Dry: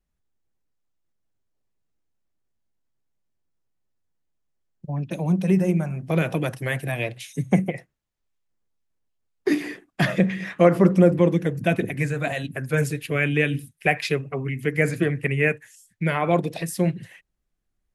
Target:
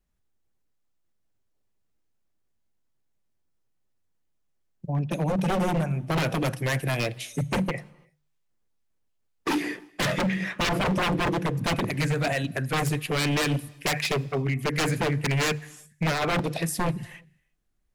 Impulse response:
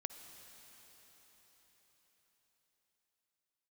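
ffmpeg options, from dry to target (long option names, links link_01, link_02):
-filter_complex "[0:a]bandreject=frequency=74.69:width_type=h:width=4,bandreject=frequency=149.38:width_type=h:width=4,aeval=exprs='0.0891*(abs(mod(val(0)/0.0891+3,4)-2)-1)':channel_layout=same,asplit=2[link_01][link_02];[1:a]atrim=start_sample=2205,afade=type=out:start_time=0.4:duration=0.01,atrim=end_sample=18081[link_03];[link_02][link_03]afir=irnorm=-1:irlink=0,volume=-10dB[link_04];[link_01][link_04]amix=inputs=2:normalize=0"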